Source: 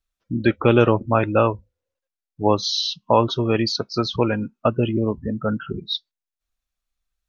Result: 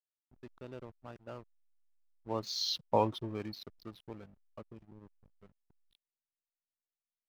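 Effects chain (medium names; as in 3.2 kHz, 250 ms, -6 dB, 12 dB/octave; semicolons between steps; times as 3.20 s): Doppler pass-by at 2.79 s, 21 m/s, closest 2.9 m; hysteresis with a dead band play -38 dBFS; trim -7 dB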